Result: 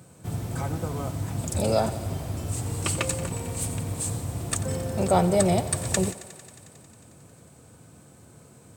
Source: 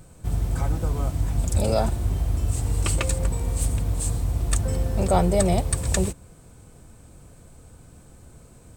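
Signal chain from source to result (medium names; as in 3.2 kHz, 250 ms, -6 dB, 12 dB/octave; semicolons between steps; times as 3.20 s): high-pass 99 Hz 24 dB/octave; on a send: thinning echo 90 ms, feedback 81%, high-pass 290 Hz, level -16 dB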